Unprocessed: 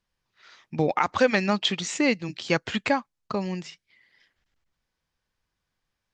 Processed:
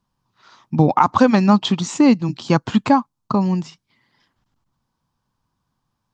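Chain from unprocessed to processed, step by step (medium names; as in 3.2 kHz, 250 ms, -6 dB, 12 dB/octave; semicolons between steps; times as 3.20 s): ten-band graphic EQ 125 Hz +10 dB, 250 Hz +9 dB, 500 Hz -4 dB, 1 kHz +12 dB, 2 kHz -10 dB; trim +3 dB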